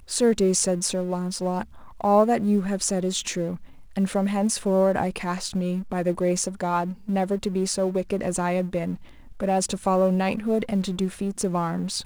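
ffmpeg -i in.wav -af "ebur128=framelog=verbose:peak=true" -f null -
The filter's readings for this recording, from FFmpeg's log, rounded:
Integrated loudness:
  I:         -24.5 LUFS
  Threshold: -34.7 LUFS
Loudness range:
  LRA:         2.5 LU
  Threshold: -44.9 LUFS
  LRA low:   -25.9 LUFS
  LRA high:  -23.4 LUFS
True peak:
  Peak:       -6.1 dBFS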